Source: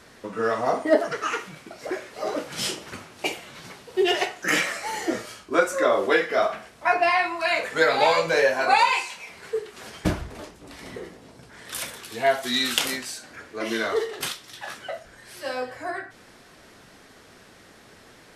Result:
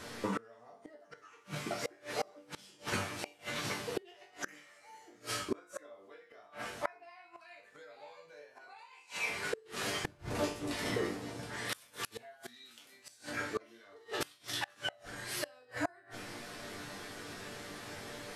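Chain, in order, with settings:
downward compressor 3 to 1, threshold −30 dBFS, peak gain reduction 13 dB
resonators tuned to a chord G2 minor, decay 0.31 s
gate with flip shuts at −39 dBFS, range −30 dB
level +17.5 dB

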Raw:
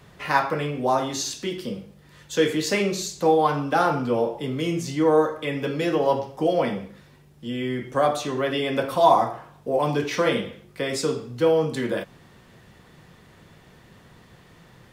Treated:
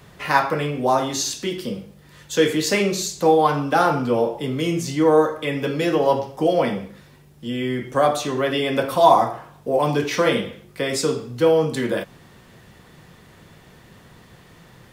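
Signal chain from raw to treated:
high-shelf EQ 8,200 Hz +4.5 dB
level +3 dB

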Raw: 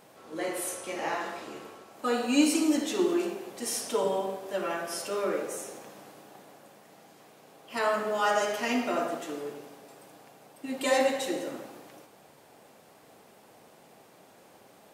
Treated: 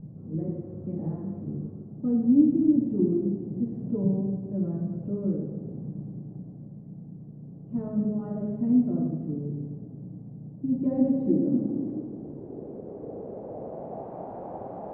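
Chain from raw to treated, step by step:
spectral tilt −3 dB per octave
in parallel at −1 dB: downward compressor, threshold −38 dBFS, peak gain reduction 23 dB
on the sum: low-pass filter sweep 160 Hz → 770 Hz, 0:10.68–0:14.21
echo with a time of its own for lows and highs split 330 Hz, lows 285 ms, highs 115 ms, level −14 dB
level +6 dB

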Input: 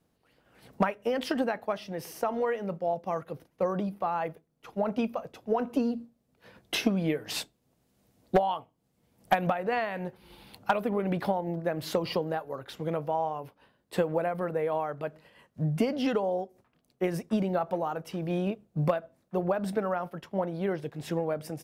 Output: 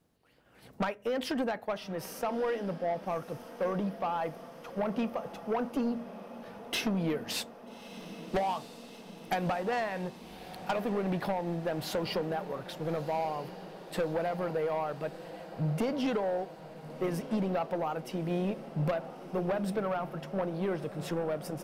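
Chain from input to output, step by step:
soft clipping −25 dBFS, distortion −11 dB
feedback delay with all-pass diffusion 1,268 ms, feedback 69%, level −14 dB

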